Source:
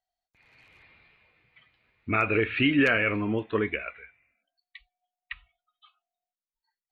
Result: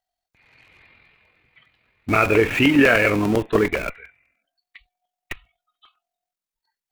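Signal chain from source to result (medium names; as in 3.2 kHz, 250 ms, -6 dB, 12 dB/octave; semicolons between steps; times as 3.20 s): dynamic bell 600 Hz, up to +5 dB, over -40 dBFS, Q 0.81; AM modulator 43 Hz, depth 25%; in parallel at -7 dB: Schmitt trigger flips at -34 dBFS; on the sum: crackling interface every 0.10 s, samples 128, repeat; trim +6 dB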